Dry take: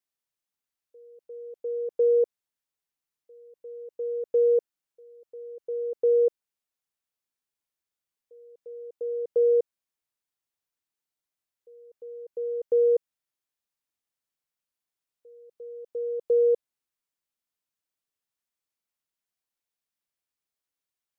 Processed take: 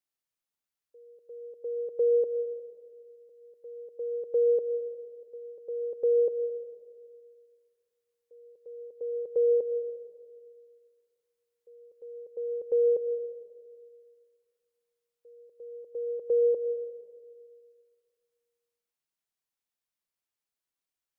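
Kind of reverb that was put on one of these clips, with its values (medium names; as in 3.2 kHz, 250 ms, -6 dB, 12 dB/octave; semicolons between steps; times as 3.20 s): algorithmic reverb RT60 2 s, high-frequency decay 0.85×, pre-delay 65 ms, DRR 9 dB; trim -2.5 dB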